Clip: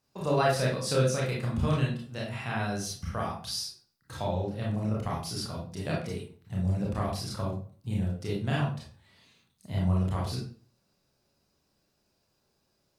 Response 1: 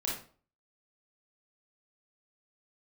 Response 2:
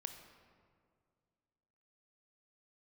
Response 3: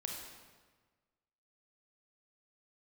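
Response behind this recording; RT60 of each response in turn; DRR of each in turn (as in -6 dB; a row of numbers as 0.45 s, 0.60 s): 1; 0.45 s, 2.1 s, 1.4 s; -4.5 dB, 6.5 dB, 0.0 dB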